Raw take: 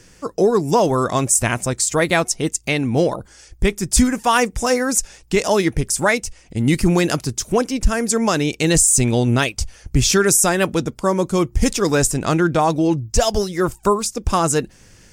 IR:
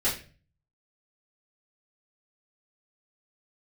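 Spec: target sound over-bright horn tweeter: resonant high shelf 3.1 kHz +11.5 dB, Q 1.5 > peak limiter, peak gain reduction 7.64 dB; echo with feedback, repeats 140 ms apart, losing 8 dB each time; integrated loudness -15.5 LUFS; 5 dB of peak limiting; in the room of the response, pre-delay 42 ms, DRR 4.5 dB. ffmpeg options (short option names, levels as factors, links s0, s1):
-filter_complex "[0:a]alimiter=limit=0.376:level=0:latency=1,aecho=1:1:140|280|420|560|700:0.398|0.159|0.0637|0.0255|0.0102,asplit=2[s0][s1];[1:a]atrim=start_sample=2205,adelay=42[s2];[s1][s2]afir=irnorm=-1:irlink=0,volume=0.188[s3];[s0][s3]amix=inputs=2:normalize=0,highshelf=f=3100:t=q:w=1.5:g=11.5,volume=0.75,alimiter=limit=0.708:level=0:latency=1"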